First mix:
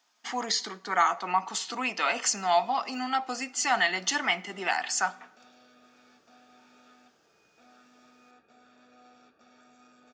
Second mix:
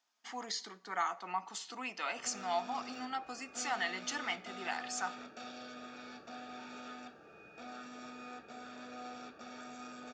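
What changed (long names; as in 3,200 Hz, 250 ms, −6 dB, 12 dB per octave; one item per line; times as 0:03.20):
speech −11.0 dB
background +10.5 dB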